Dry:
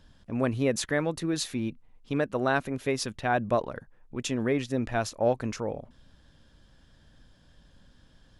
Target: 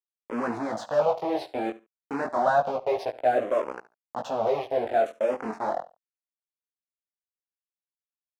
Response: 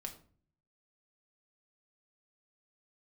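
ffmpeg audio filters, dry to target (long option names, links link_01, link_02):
-filter_complex "[0:a]asettb=1/sr,asplit=3[link_01][link_02][link_03];[link_01]atrim=end=2.214[link_04];[link_02]atrim=start=2.21:end=2.76,asetpts=PTS-STARTPTS,afade=type=in:duration=0.004:curve=qsin,afade=type=out:start_time=0.546:duration=0.004:curve=qsin,acontrast=45[link_05];[link_03]atrim=start=2.756[link_06];[link_04][link_05]acrossfade=duration=0.004:curve1=hsin:curve2=qsin[link_07];[link_07][link_06]acrossfade=duration=0.004:curve1=qsin:curve2=hsin,aeval=exprs='val(0)*gte(abs(val(0)),0.0282)':channel_layout=same,apsyclip=28dB,bandpass=frequency=670:width_type=q:width=2.8:csg=0,flanger=delay=15.5:depth=7.6:speed=0.28,asplit=2[link_08][link_09];[link_09]aecho=0:1:71|142:0.126|0.0227[link_10];[link_08][link_10]amix=inputs=2:normalize=0,asplit=2[link_11][link_12];[link_12]afreqshift=-0.6[link_13];[link_11][link_13]amix=inputs=2:normalize=1,volume=-5dB"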